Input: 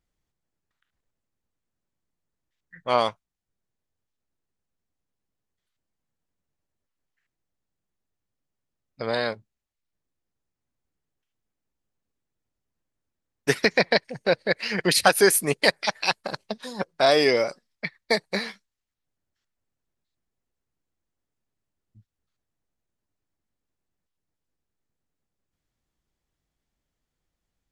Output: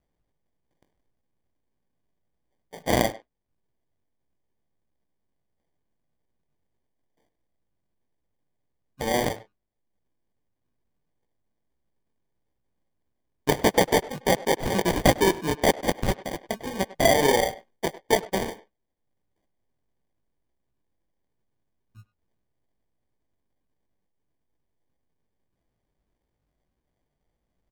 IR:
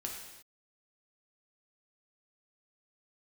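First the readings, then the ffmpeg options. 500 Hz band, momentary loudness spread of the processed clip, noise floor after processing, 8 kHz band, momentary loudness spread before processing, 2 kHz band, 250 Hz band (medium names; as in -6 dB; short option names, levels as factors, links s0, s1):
-0.5 dB, 13 LU, -79 dBFS, -2.0 dB, 16 LU, -4.5 dB, +3.0 dB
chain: -filter_complex "[0:a]asplit=2[s0][s1];[s1]acompressor=threshold=0.0282:ratio=6,volume=1.19[s2];[s0][s2]amix=inputs=2:normalize=0,lowpass=f=2800:t=q:w=1.5,flanger=delay=15.5:depth=6:speed=1.6,acrusher=samples=33:mix=1:aa=0.000001,asplit=2[s3][s4];[s4]adelay=100,highpass=300,lowpass=3400,asoftclip=type=hard:threshold=0.178,volume=0.158[s5];[s3][s5]amix=inputs=2:normalize=0"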